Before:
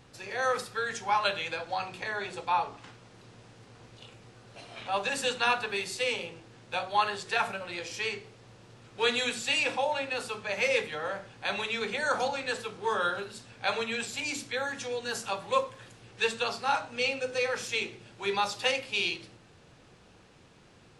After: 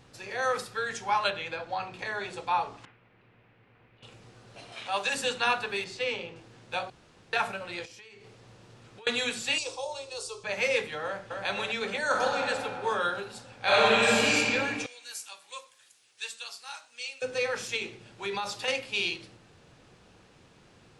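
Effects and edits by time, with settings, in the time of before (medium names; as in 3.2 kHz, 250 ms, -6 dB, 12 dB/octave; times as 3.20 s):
1.30–1.99 s: low-pass 3.1 kHz 6 dB/octave
2.85–4.03 s: four-pole ladder low-pass 2.8 kHz, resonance 45%
4.72–5.15 s: tilt EQ +2 dB/octave
5.84–6.36 s: distance through air 110 m
6.90–7.33 s: room tone
7.85–9.07 s: compression 20:1, threshold -46 dBFS
9.58–10.44 s: FFT filter 100 Hz 0 dB, 170 Hz -28 dB, 260 Hz -21 dB, 370 Hz +1 dB, 780 Hz -11 dB, 1.1 kHz -5 dB, 1.7 kHz -22 dB, 5.4 kHz +7 dB, 9.3 kHz +5 dB, 14 kHz -16 dB
11.04–11.45 s: echo throw 260 ms, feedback 70%, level -3 dB
12.03–12.43 s: reverb throw, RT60 2.6 s, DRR 0 dB
13.61–14.35 s: reverb throw, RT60 2.4 s, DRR -10.5 dB
14.86–17.22 s: differentiator
17.76–18.68 s: compression, threshold -28 dBFS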